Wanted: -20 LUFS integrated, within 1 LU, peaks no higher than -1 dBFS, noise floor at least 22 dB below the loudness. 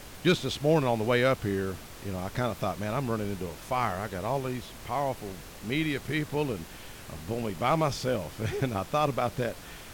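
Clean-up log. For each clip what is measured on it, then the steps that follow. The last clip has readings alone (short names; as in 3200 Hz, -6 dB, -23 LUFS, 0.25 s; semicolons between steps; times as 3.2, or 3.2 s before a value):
noise floor -46 dBFS; noise floor target -52 dBFS; loudness -30.0 LUFS; peak -13.5 dBFS; loudness target -20.0 LUFS
-> noise print and reduce 6 dB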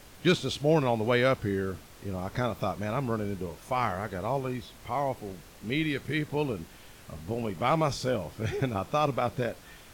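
noise floor -51 dBFS; noise floor target -52 dBFS
-> noise print and reduce 6 dB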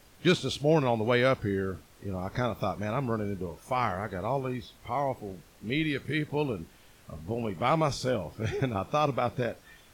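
noise floor -57 dBFS; loudness -30.0 LUFS; peak -14.0 dBFS; loudness target -20.0 LUFS
-> gain +10 dB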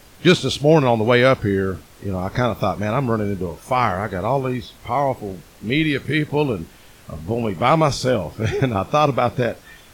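loudness -20.0 LUFS; peak -4.0 dBFS; noise floor -47 dBFS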